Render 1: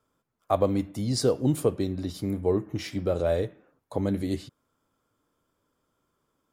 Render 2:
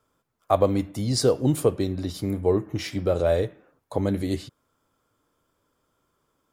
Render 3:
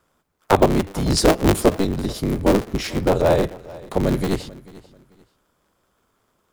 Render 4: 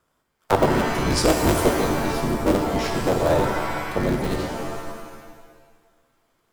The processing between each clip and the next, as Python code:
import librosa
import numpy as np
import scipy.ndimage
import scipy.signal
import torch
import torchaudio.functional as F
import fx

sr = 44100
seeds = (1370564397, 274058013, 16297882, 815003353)

y1 = fx.peak_eq(x, sr, hz=220.0, db=-3.0, octaves=1.2)
y1 = y1 * 10.0 ** (4.0 / 20.0)
y2 = fx.cycle_switch(y1, sr, every=3, mode='inverted')
y2 = fx.echo_feedback(y2, sr, ms=440, feedback_pct=27, wet_db=-20.5)
y2 = y2 * 10.0 ** (5.0 / 20.0)
y3 = fx.rev_shimmer(y2, sr, seeds[0], rt60_s=1.5, semitones=7, shimmer_db=-2, drr_db=4.5)
y3 = y3 * 10.0 ** (-4.5 / 20.0)